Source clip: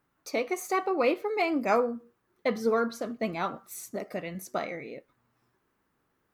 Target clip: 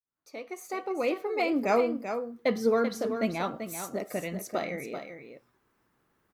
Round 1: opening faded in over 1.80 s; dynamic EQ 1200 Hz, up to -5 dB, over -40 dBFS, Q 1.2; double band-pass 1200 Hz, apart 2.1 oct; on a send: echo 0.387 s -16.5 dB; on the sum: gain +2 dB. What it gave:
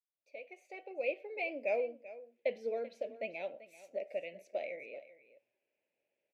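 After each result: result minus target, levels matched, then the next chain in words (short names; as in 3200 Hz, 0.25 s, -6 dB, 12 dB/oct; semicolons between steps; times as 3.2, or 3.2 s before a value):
1000 Hz band -5.5 dB; echo-to-direct -8 dB
opening faded in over 1.80 s; dynamic EQ 1200 Hz, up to -5 dB, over -40 dBFS, Q 1.2; on a send: echo 0.387 s -16.5 dB; on the sum: gain +2 dB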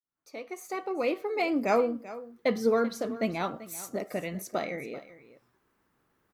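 echo-to-direct -8 dB
opening faded in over 1.80 s; dynamic EQ 1200 Hz, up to -5 dB, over -40 dBFS, Q 1.2; on a send: echo 0.387 s -8.5 dB; on the sum: gain +2 dB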